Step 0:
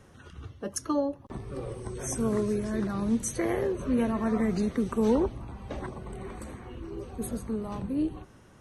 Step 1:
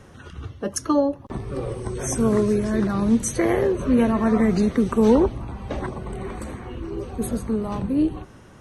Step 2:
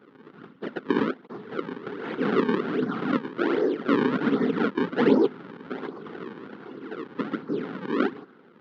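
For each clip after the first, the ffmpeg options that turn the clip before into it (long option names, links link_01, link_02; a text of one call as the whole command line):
ffmpeg -i in.wav -af "highshelf=frequency=8100:gain=-4.5,volume=8dB" out.wav
ffmpeg -i in.wav -af "afftfilt=real='hypot(re,im)*cos(2*PI*random(0))':imag='hypot(re,im)*sin(2*PI*random(1))':win_size=512:overlap=0.75,acrusher=samples=37:mix=1:aa=0.000001:lfo=1:lforange=59.2:lforate=1.3,highpass=frequency=190:width=0.5412,highpass=frequency=190:width=1.3066,equalizer=frequency=260:width_type=q:width=4:gain=4,equalizer=frequency=420:width_type=q:width=4:gain=6,equalizer=frequency=620:width_type=q:width=4:gain=-7,equalizer=frequency=1400:width_type=q:width=4:gain=8,equalizer=frequency=2500:width_type=q:width=4:gain=-5,lowpass=frequency=3300:width=0.5412,lowpass=frequency=3300:width=1.3066" out.wav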